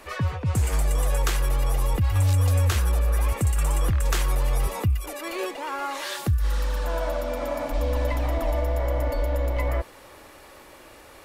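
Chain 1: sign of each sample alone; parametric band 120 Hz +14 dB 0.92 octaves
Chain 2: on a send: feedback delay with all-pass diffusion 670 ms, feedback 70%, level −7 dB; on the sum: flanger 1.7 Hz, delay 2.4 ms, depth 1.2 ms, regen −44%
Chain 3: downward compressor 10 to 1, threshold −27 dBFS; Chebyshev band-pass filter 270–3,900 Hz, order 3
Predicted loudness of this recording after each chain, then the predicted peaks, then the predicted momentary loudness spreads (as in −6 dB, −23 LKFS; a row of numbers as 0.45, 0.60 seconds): −21.0, −27.5, −37.5 LKFS; −8.0, −13.0, −20.5 dBFS; 5, 6, 13 LU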